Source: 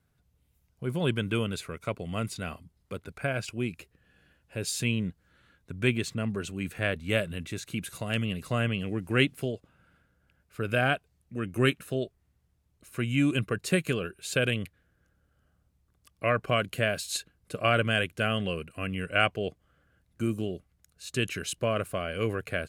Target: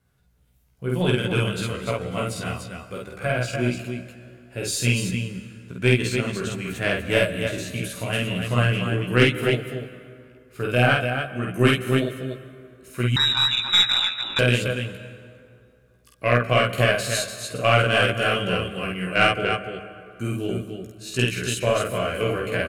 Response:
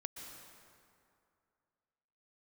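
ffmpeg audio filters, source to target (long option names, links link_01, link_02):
-filter_complex "[0:a]bandreject=frequency=50:width_type=h:width=6,bandreject=frequency=100:width_type=h:width=6,bandreject=frequency=150:width_type=h:width=6,bandreject=frequency=200:width_type=h:width=6,bandreject=frequency=250:width_type=h:width=6,bandreject=frequency=300:width_type=h:width=6,asplit=2[link_01][link_02];[link_02]adelay=16,volume=-3dB[link_03];[link_01][link_03]amix=inputs=2:normalize=0,aecho=1:1:49.56|291.5:0.891|0.562,asettb=1/sr,asplit=3[link_04][link_05][link_06];[link_04]atrim=end=13.164[link_07];[link_05]atrim=start=13.16:end=14.39,asetpts=PTS-STARTPTS,afade=type=in:duration=0.004:curve=qsin,afade=type=out:start_time=1.226:duration=0.004:curve=qsin,lowpass=frequency=3400:width_type=q:width=0.5098,lowpass=frequency=3400:width_type=q:width=0.6013,lowpass=frequency=3400:width_type=q:width=0.9,lowpass=frequency=3400:width_type=q:width=2.563,afreqshift=-4000[link_08];[link_06]atrim=start=14.386[link_09];[link_07][link_08]acrossfade=duration=0.004:curve1=hsin:curve2=qsin[link_10];[link_10][link_09]acrossfade=duration=0.004:curve1=qsin:curve2=hsin,asplit=2[link_11][link_12];[1:a]atrim=start_sample=2205[link_13];[link_12][link_13]afir=irnorm=-1:irlink=0,volume=-3dB[link_14];[link_11][link_14]amix=inputs=2:normalize=0,aeval=exprs='0.75*(cos(1*acos(clip(val(0)/0.75,-1,1)))-cos(1*PI/2))+0.15*(cos(2*acos(clip(val(0)/0.75,-1,1)))-cos(2*PI/2))+0.0376*(cos(5*acos(clip(val(0)/0.75,-1,1)))-cos(5*PI/2))+0.0299*(cos(7*acos(clip(val(0)/0.75,-1,1)))-cos(7*PI/2))':channel_layout=same,volume=-1.5dB"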